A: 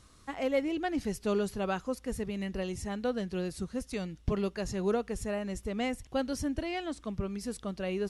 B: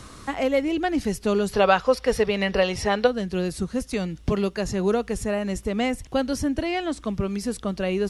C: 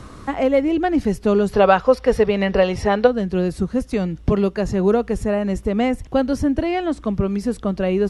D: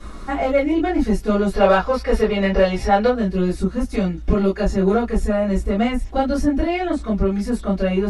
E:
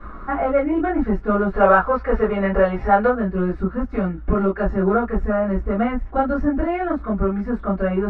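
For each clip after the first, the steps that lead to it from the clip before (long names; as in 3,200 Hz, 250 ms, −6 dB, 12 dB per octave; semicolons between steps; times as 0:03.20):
gain on a spectral selection 0:01.54–0:03.07, 400–5,900 Hz +11 dB; multiband upward and downward compressor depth 40%; level +7 dB
high-shelf EQ 2,200 Hz −11.5 dB; level +6 dB
in parallel at −6.5 dB: soft clipping −18.5 dBFS, distortion −8 dB; on the sum: convolution reverb, pre-delay 3 ms, DRR −14.5 dB; level −15.5 dB
low-pass with resonance 1,400 Hz, resonance Q 2.4; level −2 dB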